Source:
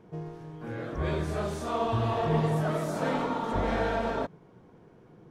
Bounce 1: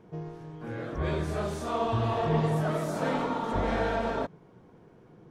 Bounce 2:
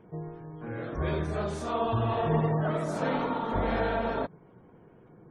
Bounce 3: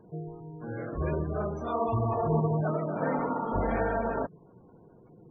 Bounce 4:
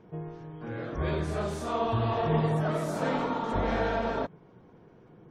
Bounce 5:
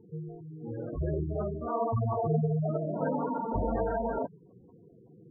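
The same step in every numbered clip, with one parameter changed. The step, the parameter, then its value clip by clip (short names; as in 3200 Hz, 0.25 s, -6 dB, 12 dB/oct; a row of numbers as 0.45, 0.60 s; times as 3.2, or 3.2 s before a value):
spectral gate, under each frame's peak: -60, -35, -20, -45, -10 dB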